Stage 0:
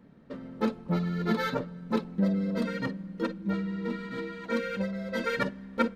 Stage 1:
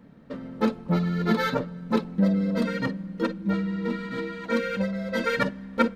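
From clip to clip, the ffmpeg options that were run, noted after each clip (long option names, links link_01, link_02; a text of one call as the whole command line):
ffmpeg -i in.wav -af "bandreject=frequency=380:width=12,volume=4.5dB" out.wav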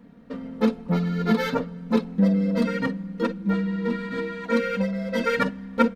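ffmpeg -i in.wav -af "aecho=1:1:4.2:0.49" out.wav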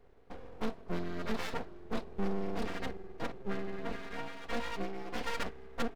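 ffmpeg -i in.wav -af "aeval=exprs='(tanh(10*val(0)+0.65)-tanh(0.65))/10':channel_layout=same,aeval=exprs='abs(val(0))':channel_layout=same,volume=-6.5dB" out.wav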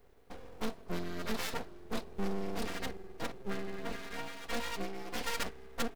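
ffmpeg -i in.wav -af "crystalizer=i=2.5:c=0,volume=-1.5dB" out.wav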